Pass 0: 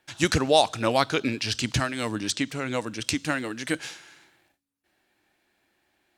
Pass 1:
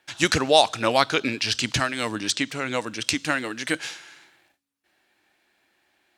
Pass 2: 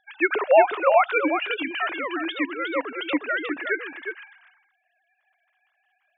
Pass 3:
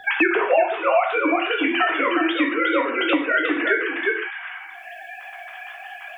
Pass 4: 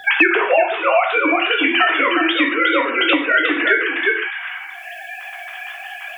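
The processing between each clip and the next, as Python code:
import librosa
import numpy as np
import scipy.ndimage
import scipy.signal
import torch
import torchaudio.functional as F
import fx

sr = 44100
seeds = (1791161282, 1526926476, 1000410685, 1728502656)

y1 = fx.lowpass(x, sr, hz=3700.0, slope=6)
y1 = fx.tilt_eq(y1, sr, slope=2.0)
y1 = F.gain(torch.from_numpy(y1), 3.5).numpy()
y2 = fx.sine_speech(y1, sr)
y2 = y2 + 10.0 ** (-6.5 / 20.0) * np.pad(y2, (int(360 * sr / 1000.0), 0))[:len(y2)]
y3 = fx.rev_gated(y2, sr, seeds[0], gate_ms=170, shape='falling', drr_db=-1.0)
y3 = fx.band_squash(y3, sr, depth_pct=100)
y4 = fx.high_shelf(y3, sr, hz=2100.0, db=10.0)
y4 = F.gain(torch.from_numpy(y4), 1.5).numpy()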